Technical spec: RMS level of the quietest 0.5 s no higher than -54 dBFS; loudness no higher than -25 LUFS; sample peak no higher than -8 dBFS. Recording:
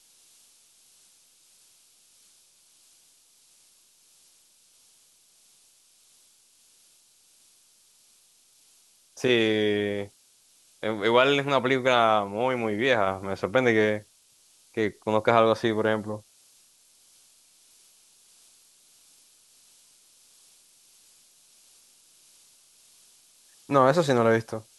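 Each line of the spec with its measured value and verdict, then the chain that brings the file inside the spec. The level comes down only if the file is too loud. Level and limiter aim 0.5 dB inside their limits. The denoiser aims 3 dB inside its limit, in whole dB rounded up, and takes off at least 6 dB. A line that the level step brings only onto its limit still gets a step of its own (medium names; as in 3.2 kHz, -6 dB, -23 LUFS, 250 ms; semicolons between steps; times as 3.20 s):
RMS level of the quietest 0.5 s -61 dBFS: pass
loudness -24.0 LUFS: fail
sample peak -6.0 dBFS: fail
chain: trim -1.5 dB; peak limiter -8.5 dBFS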